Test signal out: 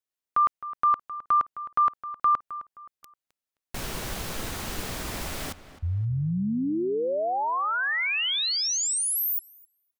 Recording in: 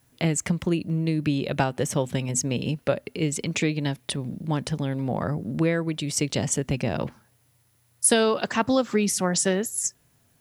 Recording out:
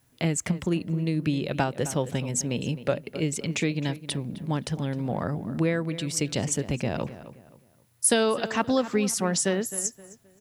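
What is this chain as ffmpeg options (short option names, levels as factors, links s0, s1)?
-filter_complex "[0:a]asplit=2[s0][s1];[s1]adelay=262,lowpass=f=3000:p=1,volume=0.2,asplit=2[s2][s3];[s3]adelay=262,lowpass=f=3000:p=1,volume=0.33,asplit=2[s4][s5];[s5]adelay=262,lowpass=f=3000:p=1,volume=0.33[s6];[s0][s2][s4][s6]amix=inputs=4:normalize=0,volume=0.794"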